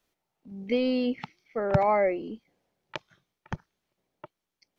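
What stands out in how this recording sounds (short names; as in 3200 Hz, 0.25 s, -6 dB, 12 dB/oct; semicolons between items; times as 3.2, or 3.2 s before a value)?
noise floor -86 dBFS; spectral tilt -5.5 dB/oct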